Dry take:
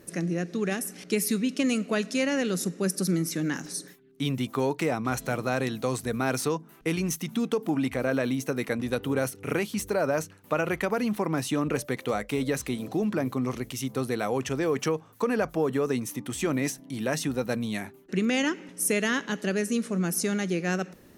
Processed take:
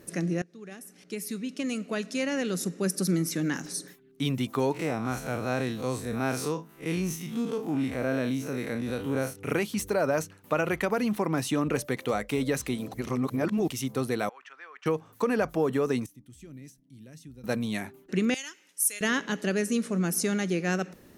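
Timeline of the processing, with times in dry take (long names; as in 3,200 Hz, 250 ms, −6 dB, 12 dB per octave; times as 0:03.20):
0:00.42–0:03.14: fade in, from −21.5 dB
0:04.72–0:09.36: spectrum smeared in time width 87 ms
0:12.94–0:13.68: reverse
0:14.29–0:14.86: four-pole ladder band-pass 1,700 Hz, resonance 40%
0:16.06–0:17.44: guitar amp tone stack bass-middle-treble 10-0-1
0:18.34–0:19.01: first difference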